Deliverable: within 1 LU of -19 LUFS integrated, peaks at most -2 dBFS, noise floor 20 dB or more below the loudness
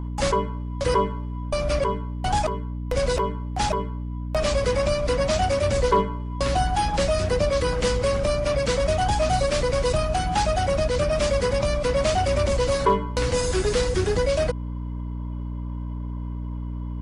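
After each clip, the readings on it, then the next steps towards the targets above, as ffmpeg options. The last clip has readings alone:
hum 60 Hz; harmonics up to 300 Hz; hum level -28 dBFS; loudness -24.0 LUFS; peak -9.0 dBFS; loudness target -19.0 LUFS
-> -af "bandreject=f=60:t=h:w=4,bandreject=f=120:t=h:w=4,bandreject=f=180:t=h:w=4,bandreject=f=240:t=h:w=4,bandreject=f=300:t=h:w=4"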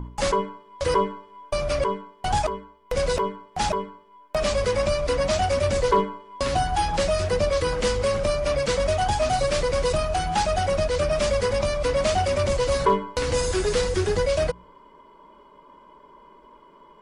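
hum none; loudness -24.0 LUFS; peak -10.0 dBFS; loudness target -19.0 LUFS
-> -af "volume=5dB"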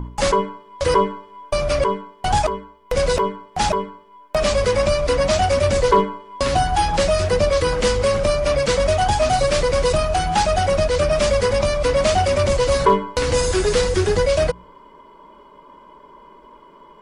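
loudness -19.0 LUFS; peak -5.0 dBFS; noise floor -48 dBFS

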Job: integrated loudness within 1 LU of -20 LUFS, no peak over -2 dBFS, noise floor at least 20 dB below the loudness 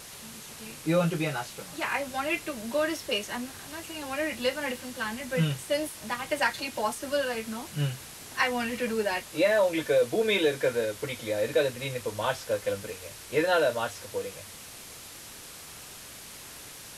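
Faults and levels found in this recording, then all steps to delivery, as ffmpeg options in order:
noise floor -45 dBFS; noise floor target -49 dBFS; loudness -29.0 LUFS; peak -13.5 dBFS; loudness target -20.0 LUFS
-> -af "afftdn=nr=6:nf=-45"
-af "volume=9dB"

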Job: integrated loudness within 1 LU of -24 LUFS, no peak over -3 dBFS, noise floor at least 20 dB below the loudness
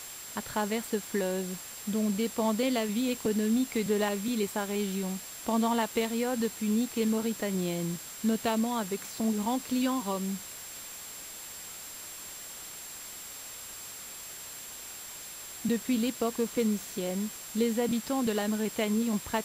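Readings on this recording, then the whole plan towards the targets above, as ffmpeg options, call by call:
steady tone 7500 Hz; tone level -45 dBFS; noise floor -44 dBFS; noise floor target -52 dBFS; loudness -31.5 LUFS; peak -15.5 dBFS; loudness target -24.0 LUFS
-> -af "bandreject=f=7.5k:w=30"
-af "afftdn=nr=8:nf=-44"
-af "volume=7.5dB"

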